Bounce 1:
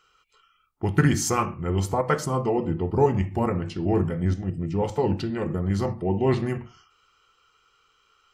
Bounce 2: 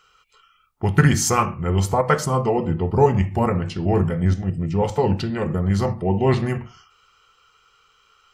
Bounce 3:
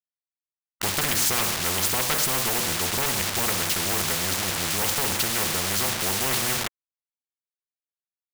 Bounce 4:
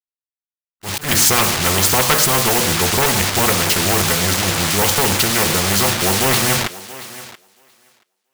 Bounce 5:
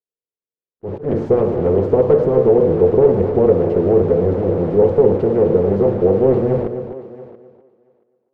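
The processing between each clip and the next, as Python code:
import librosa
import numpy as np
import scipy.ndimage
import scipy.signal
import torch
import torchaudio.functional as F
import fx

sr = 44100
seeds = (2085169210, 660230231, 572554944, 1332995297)

y1 = fx.peak_eq(x, sr, hz=310.0, db=-8.0, octaves=0.46)
y1 = y1 * librosa.db_to_amplitude(5.5)
y2 = fx.quant_dither(y1, sr, seeds[0], bits=6, dither='none')
y2 = 10.0 ** (-13.5 / 20.0) * np.tanh(y2 / 10.0 ** (-13.5 / 20.0))
y2 = fx.spectral_comp(y2, sr, ratio=4.0)
y2 = y2 * librosa.db_to_amplitude(4.0)
y3 = fx.echo_thinned(y2, sr, ms=679, feedback_pct=22, hz=170.0, wet_db=-11.0)
y3 = fx.auto_swell(y3, sr, attack_ms=141.0)
y3 = fx.spectral_expand(y3, sr, expansion=1.5)
y3 = y3 * librosa.db_to_amplitude(8.5)
y4 = fx.lowpass_res(y3, sr, hz=460.0, q=4.9)
y4 = y4 + 10.0 ** (-10.5 / 20.0) * np.pad(y4, (int(260 * sr / 1000.0), 0))[:len(y4)]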